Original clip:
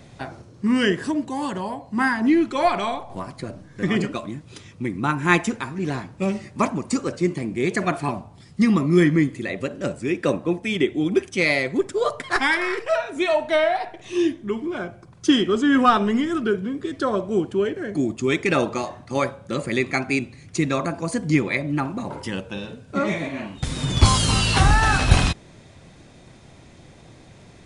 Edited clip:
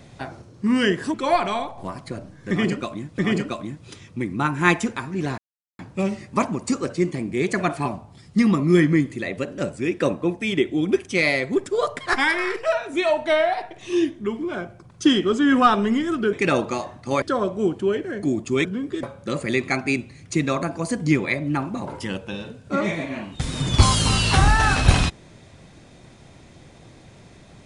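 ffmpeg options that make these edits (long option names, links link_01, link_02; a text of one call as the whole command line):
ffmpeg -i in.wav -filter_complex "[0:a]asplit=8[link_01][link_02][link_03][link_04][link_05][link_06][link_07][link_08];[link_01]atrim=end=1.142[link_09];[link_02]atrim=start=2.458:end=4.502[link_10];[link_03]atrim=start=3.818:end=6.02,asetpts=PTS-STARTPTS,afade=type=out:start_time=2.198:duration=0.004:curve=hsin,apad=pad_dur=0.41[link_11];[link_04]atrim=start=6.02:end=16.562,asetpts=PTS-STARTPTS,afade=type=in:duration=0.004:curve=hsin[link_12];[link_05]atrim=start=18.368:end=19.262[link_13];[link_06]atrim=start=16.938:end=18.372[link_14];[link_07]atrim=start=16.558:end=16.942[link_15];[link_08]atrim=start=19.258[link_16];[link_09][link_10]acrossfade=duration=0.004:curve1=hsin:curve2=hsin[link_17];[link_11][link_12]concat=n=2:v=0:a=1[link_18];[link_17][link_18]acrossfade=duration=0.004:curve1=hsin:curve2=hsin[link_19];[link_19][link_13]acrossfade=duration=0.004:curve1=hsin:curve2=hsin[link_20];[link_20][link_14]acrossfade=duration=0.004:curve1=hsin:curve2=hsin[link_21];[link_21][link_15]acrossfade=duration=0.004:curve1=hsin:curve2=hsin[link_22];[link_22][link_16]acrossfade=duration=0.004:curve1=hsin:curve2=hsin" out.wav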